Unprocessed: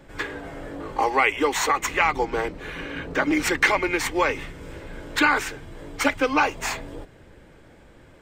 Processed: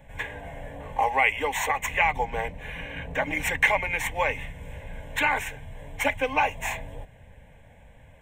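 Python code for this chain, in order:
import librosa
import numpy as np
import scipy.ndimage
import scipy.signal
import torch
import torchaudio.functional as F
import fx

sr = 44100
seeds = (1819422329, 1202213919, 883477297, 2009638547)

y = fx.peak_eq(x, sr, hz=71.0, db=3.5, octaves=1.7)
y = fx.fixed_phaser(y, sr, hz=1300.0, stages=6)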